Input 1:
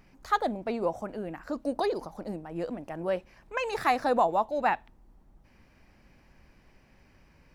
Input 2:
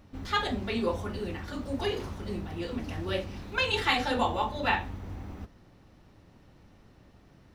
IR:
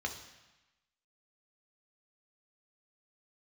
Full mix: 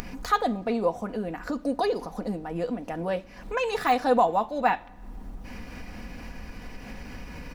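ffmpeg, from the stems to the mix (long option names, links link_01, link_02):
-filter_complex "[0:a]deesser=0.85,aecho=1:1:4.1:0.5,acompressor=mode=upward:threshold=-28dB:ratio=2.5,volume=2.5dB,asplit=2[link_01][link_02];[link_02]volume=-18.5dB[link_03];[1:a]highpass=frequency=130:width=0.5412,highpass=frequency=130:width=1.3066,volume=-1,volume=-13.5dB[link_04];[2:a]atrim=start_sample=2205[link_05];[link_03][link_05]afir=irnorm=-1:irlink=0[link_06];[link_01][link_04][link_06]amix=inputs=3:normalize=0,acompressor=mode=upward:threshold=-34dB:ratio=2.5"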